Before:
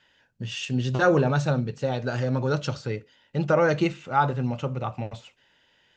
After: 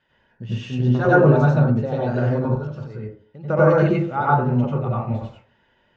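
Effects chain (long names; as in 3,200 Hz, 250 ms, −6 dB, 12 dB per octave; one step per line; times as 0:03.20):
low-pass filter 1,200 Hz 6 dB per octave
0:02.45–0:03.50: output level in coarse steps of 19 dB
convolution reverb RT60 0.45 s, pre-delay 82 ms, DRR −6 dB
level −1 dB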